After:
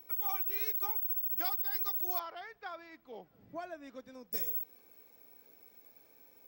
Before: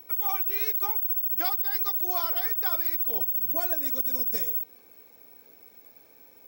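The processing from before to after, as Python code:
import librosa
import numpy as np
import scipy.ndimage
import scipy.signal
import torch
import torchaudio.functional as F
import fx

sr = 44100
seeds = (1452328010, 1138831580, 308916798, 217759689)

y = fx.lowpass(x, sr, hz=2600.0, slope=12, at=(2.19, 4.33))
y = y * 10.0 ** (-7.0 / 20.0)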